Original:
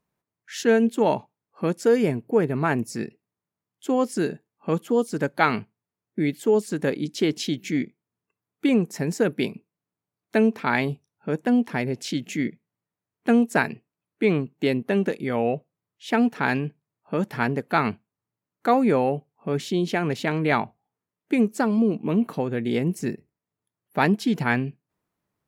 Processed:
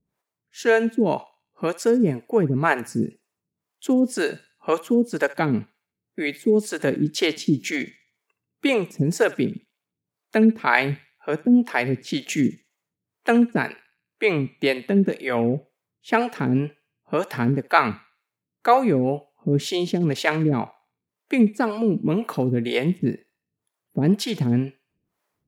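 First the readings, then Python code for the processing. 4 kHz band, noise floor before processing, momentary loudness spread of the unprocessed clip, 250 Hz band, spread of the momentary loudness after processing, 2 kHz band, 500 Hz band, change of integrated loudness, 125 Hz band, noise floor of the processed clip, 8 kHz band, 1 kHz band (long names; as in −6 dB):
+3.5 dB, below −85 dBFS, 10 LU, +2.0 dB, 9 LU, +2.5 dB, +1.0 dB, +1.5 dB, +3.5 dB, below −85 dBFS, +2.5 dB, +1.5 dB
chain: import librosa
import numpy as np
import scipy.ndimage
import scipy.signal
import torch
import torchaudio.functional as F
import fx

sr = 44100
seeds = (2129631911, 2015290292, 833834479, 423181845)

p1 = fx.harmonic_tremolo(x, sr, hz=2.0, depth_pct=100, crossover_hz=410.0)
p2 = fx.rider(p1, sr, range_db=3, speed_s=0.5)
p3 = p1 + (p2 * librosa.db_to_amplitude(2.5))
y = fx.echo_thinned(p3, sr, ms=68, feedback_pct=45, hz=1100.0, wet_db=-15.5)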